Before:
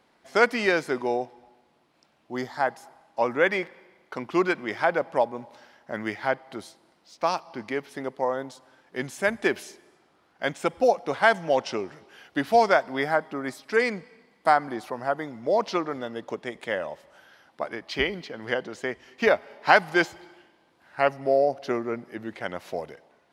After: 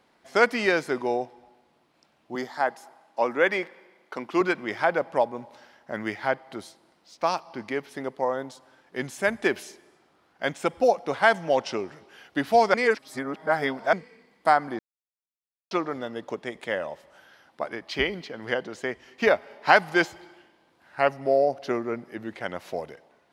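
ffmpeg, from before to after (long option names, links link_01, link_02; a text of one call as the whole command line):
ffmpeg -i in.wav -filter_complex "[0:a]asettb=1/sr,asplit=3[link_01][link_02][link_03];[link_01]atrim=end=2.354[link_04];[link_02]atrim=start=2.35:end=4.41,asetpts=PTS-STARTPTS,afade=type=in:duration=0.004:curve=qsin,afade=type=out:start_time=2.056:duration=0.004:curve=qsin,highpass=200[link_05];[link_03]atrim=start=4.406[link_06];[link_04][link_05]acrossfade=duration=0.004:curve1=hsin:curve2=qsin[link_07];[link_07][link_06]acrossfade=duration=0.004:curve1=qsin:curve2=hsin,asplit=5[link_08][link_09][link_10][link_11][link_12];[link_08]atrim=end=12.742[link_13];[link_09]atrim=start=12.738:end=13.932,asetpts=PTS-STARTPTS,areverse[link_14];[link_10]atrim=start=13.928:end=14.79,asetpts=PTS-STARTPTS,afade=type=out:start_time=0.858:duration=0.004:curve=hsin[link_15];[link_11]atrim=start=14.79:end=15.71,asetpts=PTS-STARTPTS,volume=0[link_16];[link_12]atrim=start=15.71,asetpts=PTS-STARTPTS,afade=type=in:duration=0.004:curve=hsin[link_17];[link_13][link_14]acrossfade=duration=0.004:curve1=hsin:curve2=hsin[link_18];[link_15][link_16][link_17]concat=n=3:v=0:a=1[link_19];[link_18][link_19]acrossfade=duration=0.004:curve1=hsin:curve2=hsin" out.wav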